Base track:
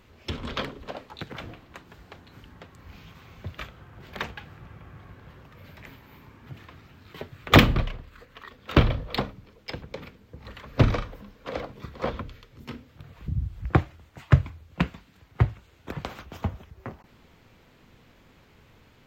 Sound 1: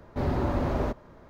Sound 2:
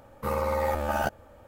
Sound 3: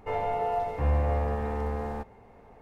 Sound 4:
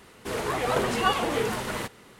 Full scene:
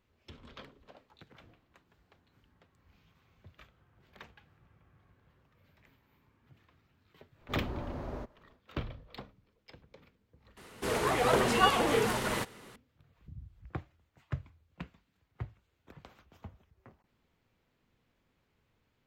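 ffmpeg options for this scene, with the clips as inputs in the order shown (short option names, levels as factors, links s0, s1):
-filter_complex "[0:a]volume=0.112,asplit=2[s0][s1];[s0]atrim=end=10.574[s2];[4:a]atrim=end=2.19,asetpts=PTS-STARTPTS,volume=0.891[s3];[s1]atrim=start=12.756[s4];[1:a]atrim=end=1.29,asetpts=PTS-STARTPTS,volume=0.237,afade=t=in:d=0.1,afade=t=out:st=1.19:d=0.1,adelay=7330[s5];[s2][s3]acrossfade=d=0.004:c1=hsin:c2=hsin[s6];[s6][s4]acrossfade=d=0.004:c1=hsin:c2=hsin[s7];[s7][s5]amix=inputs=2:normalize=0"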